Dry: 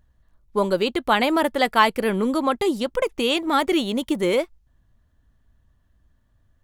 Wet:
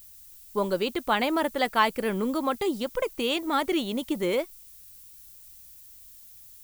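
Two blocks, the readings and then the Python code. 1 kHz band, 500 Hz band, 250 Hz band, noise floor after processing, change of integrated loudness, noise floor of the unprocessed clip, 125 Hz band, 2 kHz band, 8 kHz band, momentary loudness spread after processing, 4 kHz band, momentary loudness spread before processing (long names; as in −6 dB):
−5.5 dB, −5.5 dB, −5.5 dB, −50 dBFS, −5.5 dB, −64 dBFS, −5.5 dB, −5.5 dB, −3.5 dB, 22 LU, −5.5 dB, 6 LU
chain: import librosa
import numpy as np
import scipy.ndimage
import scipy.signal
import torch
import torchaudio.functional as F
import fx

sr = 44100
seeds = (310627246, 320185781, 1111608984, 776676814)

y = fx.dmg_noise_colour(x, sr, seeds[0], colour='violet', level_db=-44.0)
y = y * 10.0 ** (-5.5 / 20.0)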